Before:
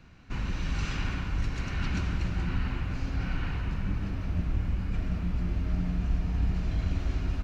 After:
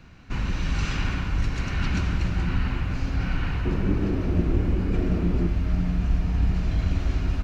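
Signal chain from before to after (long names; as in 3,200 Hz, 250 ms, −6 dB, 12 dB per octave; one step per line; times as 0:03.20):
0:03.65–0:05.47: parametric band 370 Hz +14.5 dB 1.1 octaves
level +5 dB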